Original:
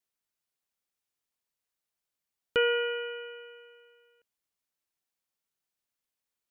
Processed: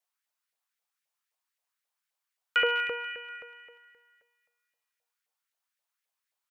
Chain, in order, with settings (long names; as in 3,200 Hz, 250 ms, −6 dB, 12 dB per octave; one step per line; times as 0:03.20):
loose part that buzzes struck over −47 dBFS, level −32 dBFS
repeating echo 243 ms, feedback 50%, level −15 dB
auto-filter high-pass saw up 3.8 Hz 570–2,000 Hz